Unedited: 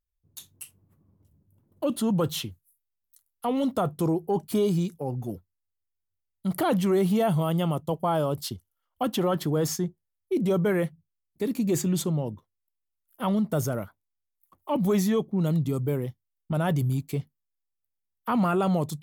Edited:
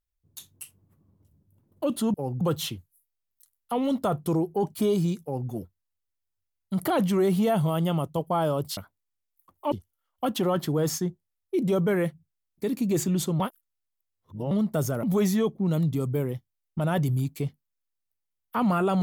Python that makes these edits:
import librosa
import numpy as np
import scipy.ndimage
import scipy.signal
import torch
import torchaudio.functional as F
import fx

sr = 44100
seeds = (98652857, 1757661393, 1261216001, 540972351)

y = fx.edit(x, sr, fx.duplicate(start_s=4.96, length_s=0.27, to_s=2.14),
    fx.reverse_span(start_s=12.18, length_s=1.11),
    fx.move(start_s=13.81, length_s=0.95, to_s=8.5), tone=tone)